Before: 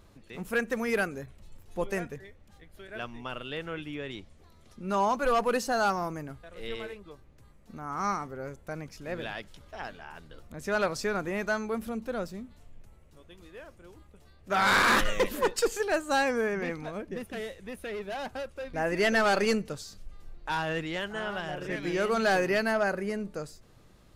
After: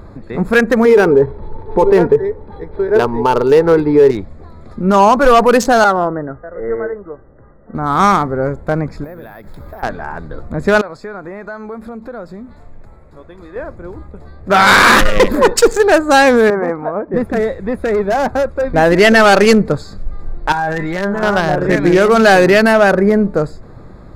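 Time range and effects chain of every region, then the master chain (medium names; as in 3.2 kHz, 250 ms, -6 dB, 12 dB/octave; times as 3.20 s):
0.85–4.11 s: small resonant body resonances 430/890/4000 Hz, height 18 dB, ringing for 50 ms + decimation joined by straight lines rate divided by 6×
5.84–7.75 s: rippled Chebyshev low-pass 2 kHz, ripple 6 dB + bass shelf 230 Hz -6 dB
9.04–9.83 s: compression 20:1, threshold -48 dBFS + careless resampling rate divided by 3×, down none, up zero stuff
10.81–13.56 s: bass shelf 400 Hz -8 dB + compression 3:1, threshold -50 dBFS
16.50–17.14 s: band-pass filter 950 Hz, Q 1.2 + tilt EQ -2 dB/octave
20.52–21.23 s: feedback comb 200 Hz, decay 0.21 s, mix 90% + level flattener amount 70%
whole clip: local Wiener filter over 15 samples; loudness maximiser +23 dB; trim -1 dB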